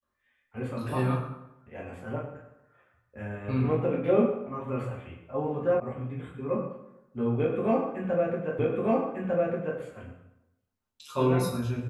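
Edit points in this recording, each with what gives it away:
0:05.80: cut off before it has died away
0:08.59: the same again, the last 1.2 s

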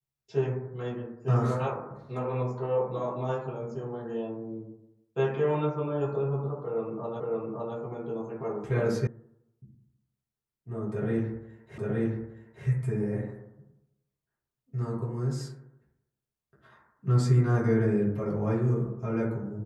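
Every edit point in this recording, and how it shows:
0:07.20: the same again, the last 0.56 s
0:09.07: cut off before it has died away
0:11.78: the same again, the last 0.87 s

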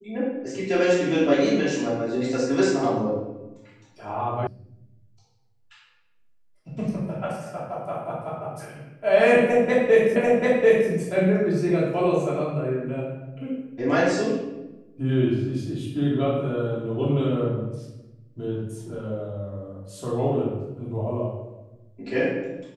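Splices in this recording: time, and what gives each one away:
0:04.47: cut off before it has died away
0:10.16: the same again, the last 0.74 s

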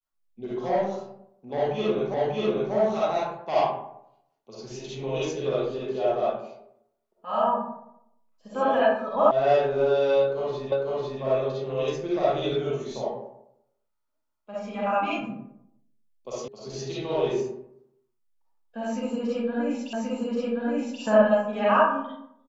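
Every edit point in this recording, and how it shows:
0:02.14: the same again, the last 0.59 s
0:09.31: cut off before it has died away
0:10.72: the same again, the last 0.5 s
0:16.48: cut off before it has died away
0:19.93: the same again, the last 1.08 s

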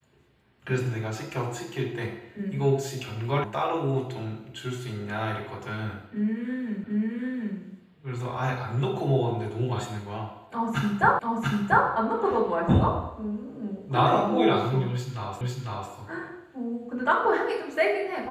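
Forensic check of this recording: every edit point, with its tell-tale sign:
0:03.44: cut off before it has died away
0:06.84: the same again, the last 0.74 s
0:11.19: the same again, the last 0.69 s
0:15.41: the same again, the last 0.5 s

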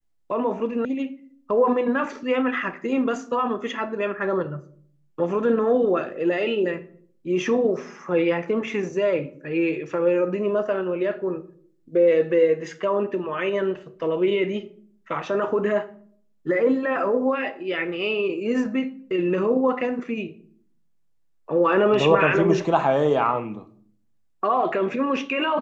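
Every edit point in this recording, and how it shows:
0:00.85: cut off before it has died away

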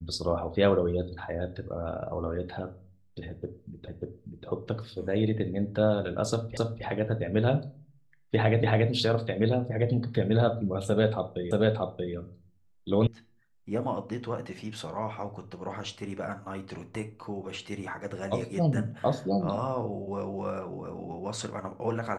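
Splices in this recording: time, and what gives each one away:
0:03.88: the same again, the last 0.59 s
0:06.57: the same again, the last 0.27 s
0:08.63: the same again, the last 0.28 s
0:11.51: the same again, the last 0.63 s
0:13.07: cut off before it has died away

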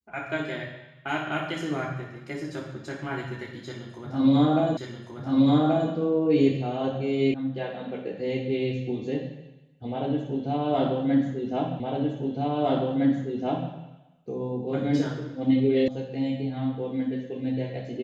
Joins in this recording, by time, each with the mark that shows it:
0:04.77: the same again, the last 1.13 s
0:07.34: cut off before it has died away
0:11.80: the same again, the last 1.91 s
0:15.88: cut off before it has died away

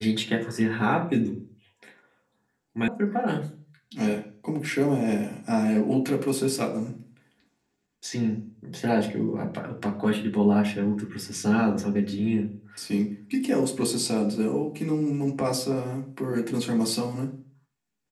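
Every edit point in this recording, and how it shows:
0:02.88: cut off before it has died away

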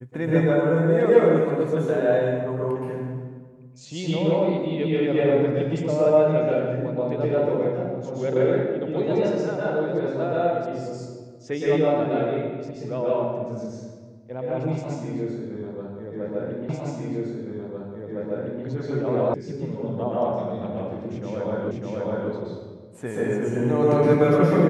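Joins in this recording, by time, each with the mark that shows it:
0:16.69: the same again, the last 1.96 s
0:19.34: cut off before it has died away
0:21.71: the same again, the last 0.6 s

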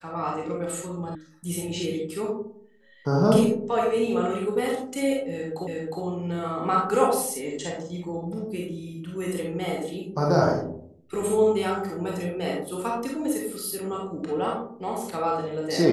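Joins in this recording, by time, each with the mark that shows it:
0:01.15: cut off before it has died away
0:05.67: the same again, the last 0.36 s

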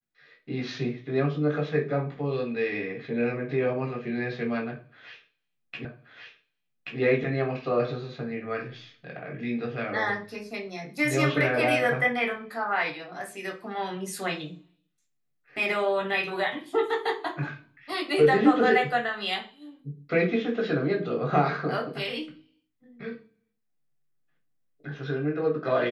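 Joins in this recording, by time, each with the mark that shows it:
0:05.85: the same again, the last 1.13 s

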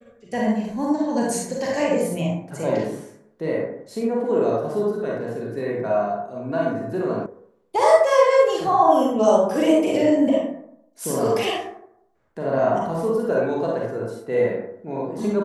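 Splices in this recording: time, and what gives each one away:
0:07.26: cut off before it has died away

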